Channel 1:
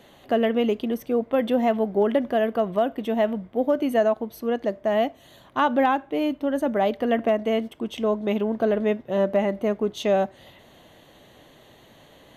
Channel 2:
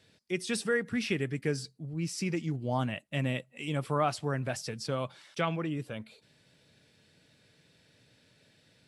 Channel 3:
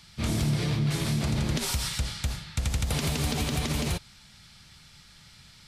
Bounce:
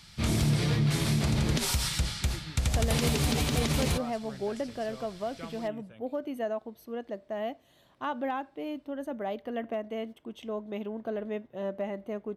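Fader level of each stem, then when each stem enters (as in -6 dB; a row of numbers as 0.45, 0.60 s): -12.0, -14.0, +0.5 dB; 2.45, 0.00, 0.00 s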